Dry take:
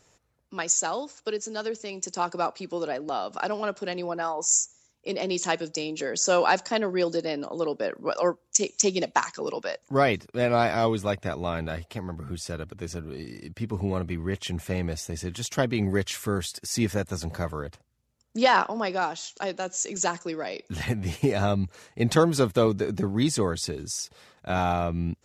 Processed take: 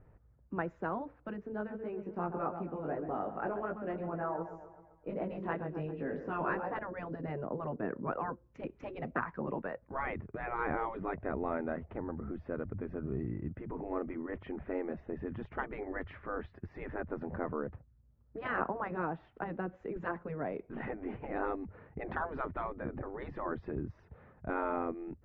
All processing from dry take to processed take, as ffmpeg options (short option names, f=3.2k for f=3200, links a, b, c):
-filter_complex "[0:a]asettb=1/sr,asplit=3[a][b][c];[a]atrim=end=1.524[d];[b]atrim=start=1.52:end=6.79,asetpts=PTS-STARTPTS,afade=t=in:d=0.004:c=qsin,afade=t=out:st=5.266:d=0.004:c=qsin,asplit=2[e][f];[f]adelay=132,lowpass=f=4.8k:p=1,volume=-11.5dB,asplit=2[g][h];[h]adelay=132,lowpass=f=4.8k:p=1,volume=0.54,asplit=2[i][j];[j]adelay=132,lowpass=f=4.8k:p=1,volume=0.54,asplit=2[k][l];[l]adelay=132,lowpass=f=4.8k:p=1,volume=0.54,asplit=2[m][n];[n]adelay=132,lowpass=f=4.8k:p=1,volume=0.54,asplit=2[o][p];[p]adelay=132,lowpass=f=4.8k:p=1,volume=0.54[q];[e][g][i][k][m][o][q]amix=inputs=7:normalize=0,atrim=end_sample=232407,flanger=delay=17.5:depth=2.6:speed=2.7,deesser=0.4[r];[c]atrim=start=6.786[s];[d][r]acrossfade=d=0.004:c1=hsin:c2=qsin[t];[t][s]acrossfade=d=0.004:c1=qsin:c2=hsin,aemphasis=mode=reproduction:type=riaa,afftfilt=real='re*lt(hypot(re,im),0.282)':imag='im*lt(hypot(re,im),0.282)':win_size=1024:overlap=0.75,lowpass=f=1.9k:w=0.5412,lowpass=f=1.9k:w=1.3066,volume=-4.5dB"